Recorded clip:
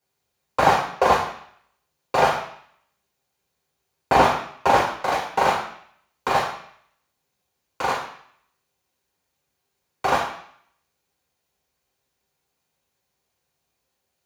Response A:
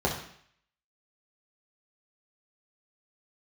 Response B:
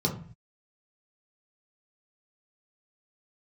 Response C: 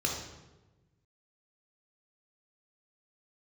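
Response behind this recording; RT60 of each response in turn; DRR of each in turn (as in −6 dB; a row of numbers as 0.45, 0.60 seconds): A; 0.60, 0.45, 1.1 seconds; −3.0, −1.5, −1.0 decibels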